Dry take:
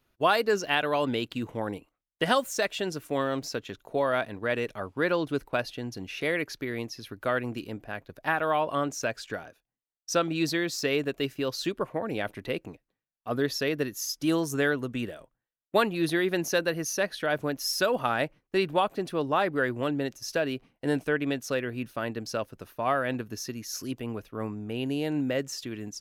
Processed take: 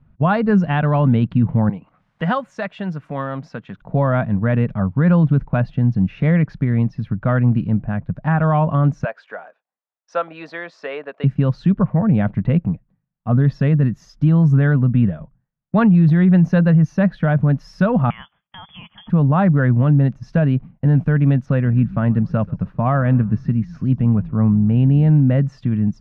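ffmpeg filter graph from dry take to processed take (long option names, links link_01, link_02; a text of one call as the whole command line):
ffmpeg -i in.wav -filter_complex "[0:a]asettb=1/sr,asplit=3[link_01][link_02][link_03];[link_01]atrim=end=1.694[link_04];[link_02]atrim=start=1.69:end=3.82,asetpts=PTS-STARTPTS,afade=type=in:duration=0.004:curve=qsin,afade=type=out:start_time=2.126:duration=0.004:curve=qsin,highpass=frequency=760:poles=1,acompressor=mode=upward:threshold=-40dB:ratio=2.5:attack=3.2:release=140:knee=2.83:detection=peak[link_05];[link_03]atrim=start=3.816[link_06];[link_04][link_05]acrossfade=duration=0.004:curve1=hsin:curve2=qsin[link_07];[link_07][link_06]acrossfade=duration=0.004:curve1=qsin:curve2=hsin,asettb=1/sr,asplit=3[link_08][link_09][link_10];[link_08]atrim=end=9.044[link_11];[link_09]atrim=start=9.04:end=11.24,asetpts=PTS-STARTPTS,afade=type=in:duration=0.004:curve=qsin,afade=type=out:start_time=2.196:duration=0.004:curve=qsin,highpass=frequency=480:width=0.5412,highpass=frequency=480:width=1.3066,highshelf=frequency=8300:gain=-11.5[link_12];[link_10]atrim=start=11.236[link_13];[link_11][link_12]acrossfade=duration=0.004:curve1=hsin:curve2=qsin[link_14];[link_14][link_13]acrossfade=duration=0.004:curve1=qsin:curve2=hsin,asettb=1/sr,asplit=3[link_15][link_16][link_17];[link_15]atrim=end=18.104[link_18];[link_16]atrim=start=18.1:end=19.1,asetpts=PTS-STARTPTS,afade=type=in:duration=0.004:curve=qsin,afade=type=out:start_time=0.996:duration=0.004:curve=qsin,highpass=190,acompressor=threshold=-32dB:ratio=16:attack=3.2:release=140:knee=1:detection=peak,lowpass=frequency=3100:width_type=q:width=0.5098,lowpass=frequency=3100:width_type=q:width=0.6013,lowpass=frequency=3100:width_type=q:width=0.9,lowpass=frequency=3100:width_type=q:width=2.563,afreqshift=-3600[link_19];[link_17]atrim=start=19.096[link_20];[link_18][link_19]acrossfade=duration=0.004:curve1=hsin:curve2=qsin[link_21];[link_21][link_20]acrossfade=duration=0.004:curve1=qsin:curve2=hsin,asettb=1/sr,asplit=3[link_22][link_23][link_24];[link_22]atrim=end=21.464[link_25];[link_23]atrim=start=21.46:end=25.1,asetpts=PTS-STARTPTS,afade=type=in:duration=0.004:curve=qsin,afade=type=out:start_time=3.636:duration=0.004:curve=qsin,highshelf=frequency=9100:gain=-4.5,asplit=4[link_26][link_27][link_28][link_29];[link_27]adelay=132,afreqshift=-60,volume=-24dB[link_30];[link_28]adelay=264,afreqshift=-120,volume=-31.1dB[link_31];[link_29]adelay=396,afreqshift=-180,volume=-38.3dB[link_32];[link_26][link_30][link_31][link_32]amix=inputs=4:normalize=0,atrim=end_sample=160524,acrossover=split=4200[link_33][link_34];[link_34]acompressor=threshold=-48dB:ratio=4:attack=1:release=60[link_35];[link_33][link_35]amix=inputs=2:normalize=0[link_36];[link_24]atrim=start=25.096[link_37];[link_25][link_36]acrossfade=duration=0.004:curve1=hsin:curve2=qsin[link_38];[link_38][link_37]acrossfade=duration=0.004:curve1=qsin:curve2=hsin,lowpass=1300,lowshelf=frequency=250:width_type=q:width=3:gain=12,alimiter=limit=-16.5dB:level=0:latency=1:release=14,volume=9dB" out.wav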